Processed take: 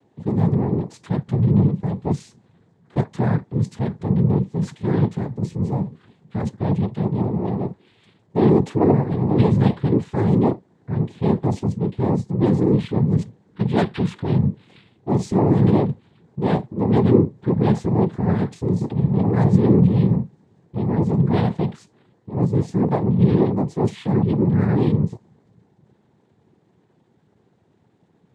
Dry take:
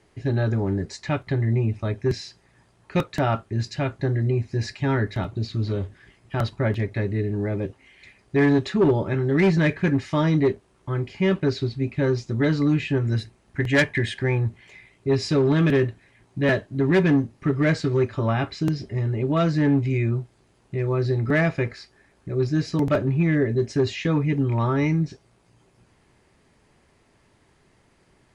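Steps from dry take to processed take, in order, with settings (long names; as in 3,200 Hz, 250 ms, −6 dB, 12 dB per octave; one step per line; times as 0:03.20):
tilt shelving filter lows +9.5 dB, about 760 Hz
transient designer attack −4 dB, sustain +3 dB, from 0:18.80 sustain +12 dB, from 0:20.16 sustain +3 dB
cochlear-implant simulation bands 6
level −3 dB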